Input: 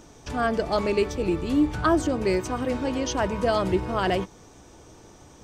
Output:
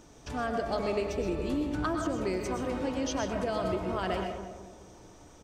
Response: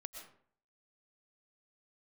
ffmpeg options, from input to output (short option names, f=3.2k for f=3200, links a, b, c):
-filter_complex "[0:a]acompressor=threshold=-23dB:ratio=6,asplit=2[a][b];[b]adelay=207,lowpass=f=1.2k:p=1,volume=-7dB,asplit=2[c][d];[d]adelay=207,lowpass=f=1.2k:p=1,volume=0.47,asplit=2[e][f];[f]adelay=207,lowpass=f=1.2k:p=1,volume=0.47,asplit=2[g][h];[h]adelay=207,lowpass=f=1.2k:p=1,volume=0.47,asplit=2[i][j];[j]adelay=207,lowpass=f=1.2k:p=1,volume=0.47,asplit=2[k][l];[l]adelay=207,lowpass=f=1.2k:p=1,volume=0.47[m];[a][c][e][g][i][k][m]amix=inputs=7:normalize=0[n];[1:a]atrim=start_sample=2205,afade=t=out:st=0.22:d=0.01,atrim=end_sample=10143[o];[n][o]afir=irnorm=-1:irlink=0"